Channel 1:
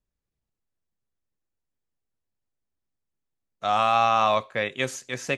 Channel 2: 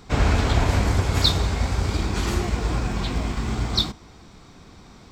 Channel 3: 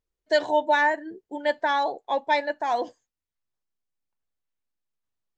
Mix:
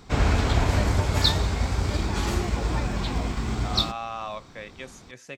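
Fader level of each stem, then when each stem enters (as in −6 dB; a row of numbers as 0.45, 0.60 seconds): −13.0, −2.0, −15.5 decibels; 0.00, 0.00, 0.45 seconds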